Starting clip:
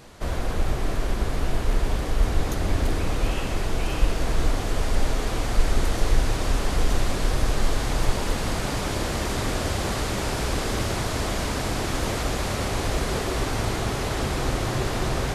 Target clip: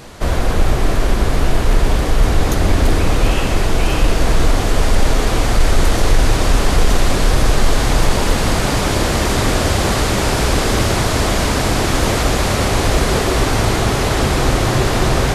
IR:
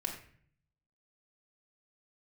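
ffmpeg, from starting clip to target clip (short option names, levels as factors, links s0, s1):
-af "apsyclip=5.96,volume=0.562"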